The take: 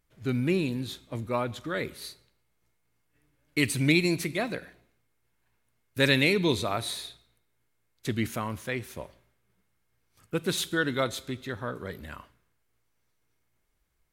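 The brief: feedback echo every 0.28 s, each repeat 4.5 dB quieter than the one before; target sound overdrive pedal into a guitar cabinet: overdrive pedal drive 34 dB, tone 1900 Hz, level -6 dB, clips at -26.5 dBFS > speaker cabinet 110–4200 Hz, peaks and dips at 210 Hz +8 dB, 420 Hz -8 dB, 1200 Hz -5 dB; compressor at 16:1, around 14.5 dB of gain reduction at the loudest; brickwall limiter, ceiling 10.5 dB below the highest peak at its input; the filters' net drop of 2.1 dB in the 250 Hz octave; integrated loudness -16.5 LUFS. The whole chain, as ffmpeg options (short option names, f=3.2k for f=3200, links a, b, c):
-filter_complex "[0:a]equalizer=f=250:t=o:g=-4.5,acompressor=threshold=-33dB:ratio=16,alimiter=level_in=8dB:limit=-24dB:level=0:latency=1,volume=-8dB,aecho=1:1:280|560|840|1120|1400|1680|1960|2240|2520:0.596|0.357|0.214|0.129|0.0772|0.0463|0.0278|0.0167|0.01,asplit=2[a][b];[b]highpass=f=720:p=1,volume=34dB,asoftclip=type=tanh:threshold=-26.5dB[c];[a][c]amix=inputs=2:normalize=0,lowpass=f=1.9k:p=1,volume=-6dB,highpass=110,equalizer=f=210:t=q:w=4:g=8,equalizer=f=420:t=q:w=4:g=-8,equalizer=f=1.2k:t=q:w=4:g=-5,lowpass=f=4.2k:w=0.5412,lowpass=f=4.2k:w=1.3066,volume=20.5dB"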